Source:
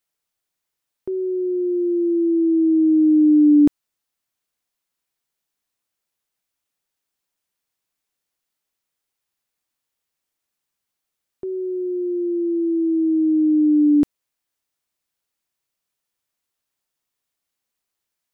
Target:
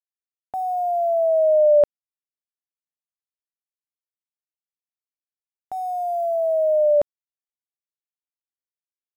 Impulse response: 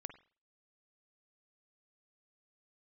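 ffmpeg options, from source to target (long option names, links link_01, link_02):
-af "aemphasis=mode=reproduction:type=75fm,aeval=exprs='val(0)*gte(abs(val(0)),0.0126)':channel_layout=same,asetrate=88200,aresample=44100,volume=-2.5dB"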